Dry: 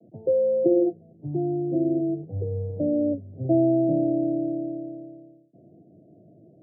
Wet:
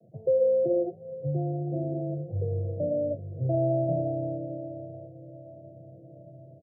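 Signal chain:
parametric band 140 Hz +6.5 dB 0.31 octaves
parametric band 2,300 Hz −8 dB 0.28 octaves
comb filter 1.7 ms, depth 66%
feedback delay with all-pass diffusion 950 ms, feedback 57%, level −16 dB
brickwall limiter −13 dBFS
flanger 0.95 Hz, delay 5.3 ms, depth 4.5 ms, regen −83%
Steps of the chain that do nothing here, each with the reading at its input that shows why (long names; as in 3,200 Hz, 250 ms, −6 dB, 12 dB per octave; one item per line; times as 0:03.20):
parametric band 2,300 Hz: nothing at its input above 680 Hz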